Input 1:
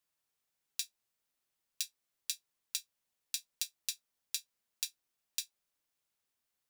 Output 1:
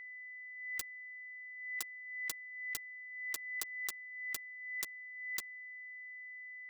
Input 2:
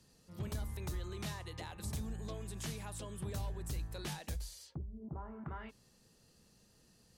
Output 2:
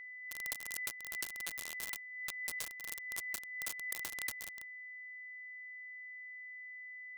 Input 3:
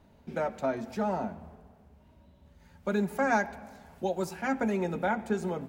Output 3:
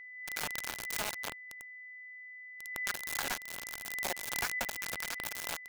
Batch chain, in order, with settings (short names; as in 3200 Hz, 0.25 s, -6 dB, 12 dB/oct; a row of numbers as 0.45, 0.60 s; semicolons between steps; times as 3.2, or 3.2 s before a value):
per-bin compression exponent 0.4; pre-emphasis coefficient 0.97; compressor 5:1, threshold -45 dBFS; LFO high-pass sine 3.6 Hz 490–2500 Hz; analogue delay 0.118 s, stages 1024, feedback 58%, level -13 dB; companded quantiser 2-bit; whine 2000 Hz -47 dBFS; backwards sustainer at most 47 dB/s; gain +1 dB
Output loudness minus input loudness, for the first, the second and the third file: -1.0, +2.0, -6.0 LU